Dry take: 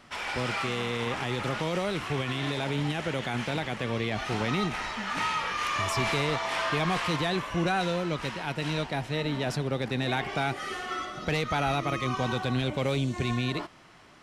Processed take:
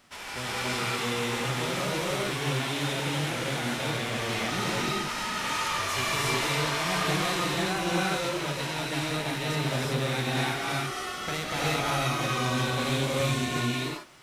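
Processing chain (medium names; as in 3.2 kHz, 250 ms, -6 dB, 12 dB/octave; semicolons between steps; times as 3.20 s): formants flattened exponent 0.6; gated-style reverb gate 400 ms rising, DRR -5.5 dB; trim -6 dB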